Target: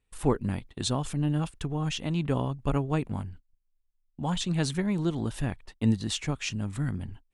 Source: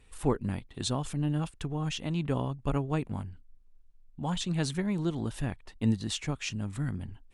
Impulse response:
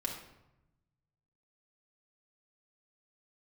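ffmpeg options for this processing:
-af "agate=range=0.1:threshold=0.00501:ratio=16:detection=peak,volume=1.33"

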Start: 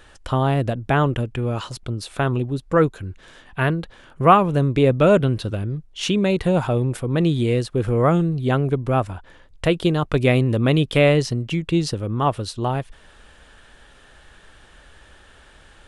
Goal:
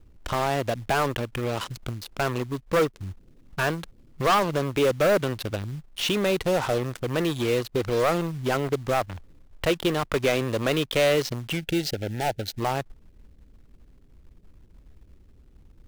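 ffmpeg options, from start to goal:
-filter_complex "[0:a]lowpass=5700,acrossover=split=350[s0][s1];[s0]acompressor=threshold=0.0316:ratio=8[s2];[s1]acrusher=bits=4:mix=0:aa=0.5[s3];[s2][s3]amix=inputs=2:normalize=0,asoftclip=type=hard:threshold=0.141,acrusher=bits=5:mode=log:mix=0:aa=0.000001,asettb=1/sr,asplit=3[s4][s5][s6];[s4]atrim=end=11.574[s7];[s5]atrim=start=11.57:end=12.58,asetpts=PTS-STARTPTS,afade=t=in:d=0.004:c=qsin,afade=t=out:st=1.006:d=0.004:c=qsin,asuperstop=centerf=1100:order=8:qfactor=2.2[s8];[s6]atrim=start=12.576[s9];[s7][s8]acrossfade=d=0.004:c1=hsin:c2=qsin[s10];[s10][s9]acrossfade=d=0.004:c1=qsin:c2=hsin"

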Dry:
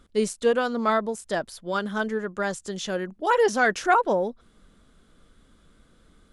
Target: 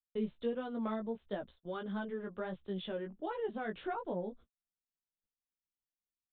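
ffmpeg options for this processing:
-filter_complex "[0:a]equalizer=f=1700:t=o:w=1.9:g=-7,acrossover=split=230[s0][s1];[s1]acompressor=threshold=0.0355:ratio=10[s2];[s0][s2]amix=inputs=2:normalize=0,flanger=delay=15:depth=3.5:speed=1.5,aresample=8000,aresample=44100,agate=range=0.00501:threshold=0.00316:ratio=16:detection=peak,volume=0.631"

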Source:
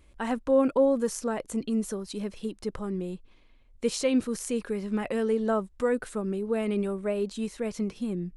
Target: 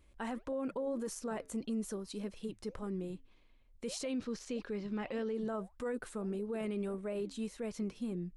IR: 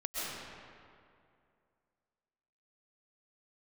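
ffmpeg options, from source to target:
-filter_complex "[0:a]flanger=delay=0.2:depth=5.5:regen=-88:speed=1.7:shape=sinusoidal,alimiter=level_in=1.5:limit=0.0631:level=0:latency=1:release=33,volume=0.668,asettb=1/sr,asplit=3[s0][s1][s2];[s0]atrim=end=4.184[s3];[s1]atrim=start=4.18:end=5.35,asetpts=PTS-STARTPTS,afade=t=in:d=0.004:c=qsin,afade=t=out:st=1.166:d=0.004:c=qsin,highshelf=f=7200:t=q:w=1.5:g=-14[s4];[s2]atrim=start=5.346[s5];[s3][s4]acrossfade=d=0.004:c1=hsin:c2=qsin[s6];[s6][s5]acrossfade=d=0.004:c1=qsin:c2=hsin,volume=0.75"

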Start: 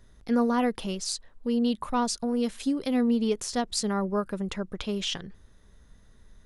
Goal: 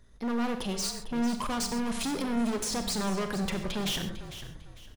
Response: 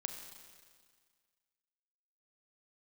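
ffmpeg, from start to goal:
-filter_complex "[0:a]dynaudnorm=f=310:g=7:m=4.47,alimiter=limit=0.251:level=0:latency=1:release=166,atempo=1.3,volume=25.1,asoftclip=hard,volume=0.0398,asplit=4[s0][s1][s2][s3];[s1]adelay=450,afreqshift=-38,volume=0.237[s4];[s2]adelay=900,afreqshift=-76,volume=0.0733[s5];[s3]adelay=1350,afreqshift=-114,volume=0.0229[s6];[s0][s4][s5][s6]amix=inputs=4:normalize=0[s7];[1:a]atrim=start_sample=2205,atrim=end_sample=6174[s8];[s7][s8]afir=irnorm=-1:irlink=0"

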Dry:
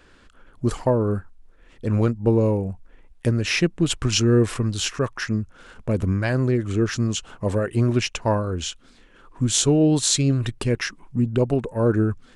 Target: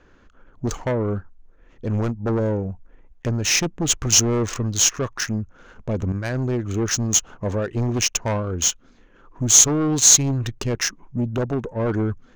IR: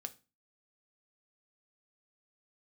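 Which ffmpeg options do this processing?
-filter_complex "[0:a]asettb=1/sr,asplit=3[s0][s1][s2];[s0]atrim=end=6.124[s3];[s1]atrim=start=6.12:end=6.6,asetpts=PTS-STARTPTS,afade=t=in:d=0.004:c=qsin,afade=t=out:st=0.476:d=0.004:c=qsin,agate=range=0.0224:threshold=0.126:ratio=3:detection=peak[s4];[s2]atrim=start=6.596[s5];[s3][s4]acrossfade=d=0.004:c1=hsin:c2=qsin[s6];[s6][s5]acrossfade=d=0.004:c1=qsin:c2=hsin,aeval=exprs='0.708*sin(PI/2*3.55*val(0)/0.708)':c=same,lowpass=f=6500:t=q:w=10,adynamicsmooth=sensitivity=0.5:basefreq=2000,asettb=1/sr,asplit=3[s7][s8][s9];[s7]atrim=end=0.744[s10];[s8]atrim=start=0.74:end=1.16,asetpts=PTS-STARTPTS,afade=t=in:d=0.004:c=qsin,afade=t=out:st=0.416:d=0.004:c=qsin,bandreject=f=4800:w=7.3[s11];[s9]atrim=start=1.156[s12];[s10][s11]acrossfade=d=0.004:c1=hsin:c2=qsin[s13];[s13][s12]acrossfade=d=0.004:c1=qsin:c2=hsin,volume=0.188"

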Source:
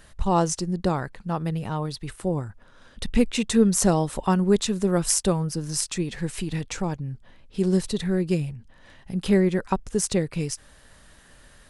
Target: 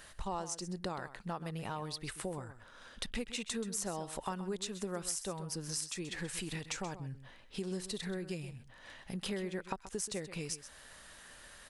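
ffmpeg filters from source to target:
-af "lowshelf=f=390:g=-11.5,acompressor=threshold=0.0126:ratio=5,aecho=1:1:130:0.224,volume=1.12"

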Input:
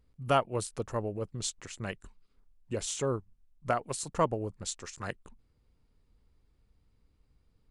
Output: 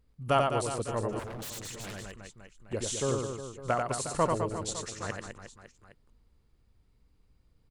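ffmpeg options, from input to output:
-filter_complex "[0:a]aecho=1:1:90|207|359.1|556.8|813.9:0.631|0.398|0.251|0.158|0.1,asettb=1/sr,asplit=3[s0][s1][s2];[s0]atrim=end=1.194[s3];[s1]atrim=start=1.19:end=2.73,asetpts=PTS-STARTPTS,afade=t=in:d=0.004:c=qsin,afade=t=out:st=1.536:d=0.004:c=qsin,aeval=exprs='0.0178*(abs(mod(val(0)/0.0178+3,4)-2)-1)':c=same[s4];[s2]atrim=start=2.726[s5];[s3][s4]acrossfade=d=0.004:c1=hsin:c2=qsin[s6];[s6][s5]acrossfade=d=0.004:c1=qsin:c2=hsin"

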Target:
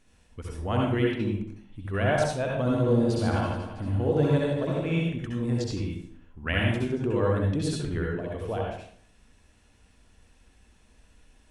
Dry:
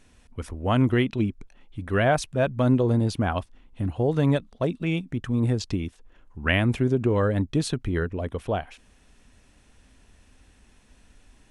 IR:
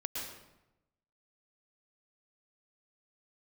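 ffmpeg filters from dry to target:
-filter_complex "[0:a]asettb=1/sr,asplit=3[s0][s1][s2];[s0]atrim=end=2.624[s3];[s1]atrim=start=2.62:end=5.02,asetpts=PTS-STARTPTS,afade=t=in:d=0.004:c=qsin,afade=t=out:st=2.396:d=0.004:c=qsin,aecho=1:1:60|144|261.6|426.2|656.7:0.631|0.398|0.251|0.158|0.1,atrim=end_sample=105840[s4];[s2]atrim=start=5.016[s5];[s3][s4]acrossfade=d=0.004:c1=hsin:c2=qsin[s6];[s6][s5]acrossfade=d=0.004:c1=qsin:c2=hsin[s7];[1:a]atrim=start_sample=2205,asetrate=74970,aresample=44100[s8];[s7][s8]afir=irnorm=-1:irlink=0"

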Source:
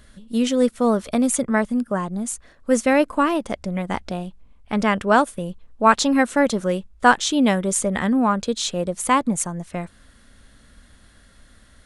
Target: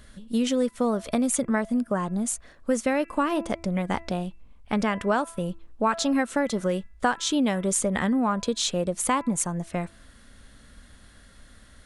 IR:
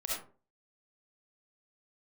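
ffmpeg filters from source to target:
-af "bandreject=f=333.1:t=h:w=4,bandreject=f=666.2:t=h:w=4,bandreject=f=999.3:t=h:w=4,bandreject=f=1332.4:t=h:w=4,bandreject=f=1665.5:t=h:w=4,bandreject=f=1998.6:t=h:w=4,bandreject=f=2331.7:t=h:w=4,bandreject=f=2664.8:t=h:w=4,acompressor=threshold=0.0891:ratio=4"

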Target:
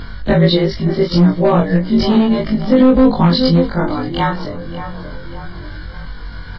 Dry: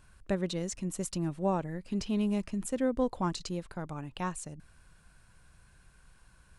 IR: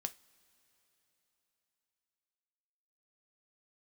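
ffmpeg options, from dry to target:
-filter_complex "[0:a]afftfilt=real='re':imag='-im':win_size=2048:overlap=0.75,asuperstop=centerf=2600:order=8:qfactor=5,equalizer=f=870:w=0.67:g=-3,asplit=2[s0][s1];[s1]adelay=579,lowpass=f=2200:p=1,volume=0.2,asplit=2[s2][s3];[s3]adelay=579,lowpass=f=2200:p=1,volume=0.39,asplit=2[s4][s5];[s5]adelay=579,lowpass=f=2200:p=1,volume=0.39,asplit=2[s6][s7];[s7]adelay=579,lowpass=f=2200:p=1,volume=0.39[s8];[s2][s4][s6][s8]amix=inputs=4:normalize=0[s9];[s0][s9]amix=inputs=2:normalize=0,volume=31.6,asoftclip=hard,volume=0.0316,acrossover=split=350|3000[s10][s11][s12];[s11]acompressor=threshold=0.0126:ratio=10[s13];[s10][s13][s12]amix=inputs=3:normalize=0,aresample=11025,aresample=44100,flanger=delay=19:depth=2.5:speed=0.31,acompressor=mode=upward:threshold=0.00355:ratio=2.5,alimiter=level_in=37.6:limit=0.891:release=50:level=0:latency=1,volume=0.891" -ar 16000 -c:a wmav2 -b:a 32k

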